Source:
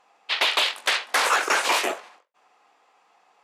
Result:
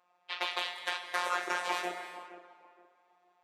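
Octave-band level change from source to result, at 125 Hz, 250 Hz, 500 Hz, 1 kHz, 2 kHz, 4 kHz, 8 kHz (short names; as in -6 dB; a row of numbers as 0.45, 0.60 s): n/a, -7.5 dB, -10.5 dB, -10.0 dB, -12.0 dB, -14.0 dB, -17.5 dB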